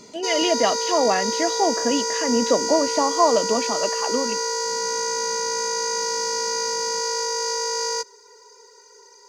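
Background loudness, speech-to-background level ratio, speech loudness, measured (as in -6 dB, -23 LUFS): -23.5 LUFS, 0.5 dB, -23.0 LUFS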